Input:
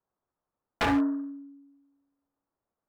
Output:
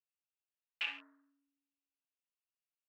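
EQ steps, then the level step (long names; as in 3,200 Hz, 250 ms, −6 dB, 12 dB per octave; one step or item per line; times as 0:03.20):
resonant band-pass 2,700 Hz, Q 9
spectral tilt +1.5 dB per octave
+2.0 dB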